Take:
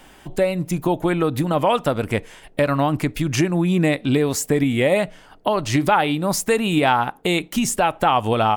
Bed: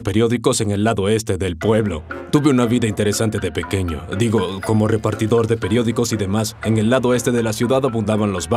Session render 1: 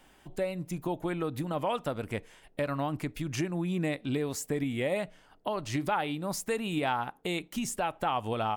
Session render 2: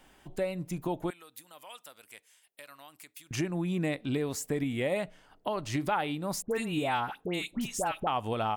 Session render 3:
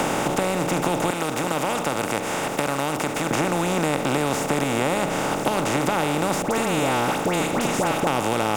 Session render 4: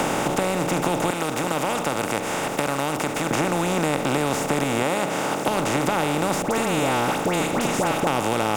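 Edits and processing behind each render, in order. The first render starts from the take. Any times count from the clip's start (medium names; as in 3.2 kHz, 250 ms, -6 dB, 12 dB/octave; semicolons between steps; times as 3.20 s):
trim -12.5 dB
1.10–3.31 s: differentiator; 6.42–8.07 s: phase dispersion highs, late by 90 ms, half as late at 1.5 kHz
spectral levelling over time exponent 0.2; three bands compressed up and down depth 70%
4.83–5.48 s: high-pass 160 Hz 6 dB/octave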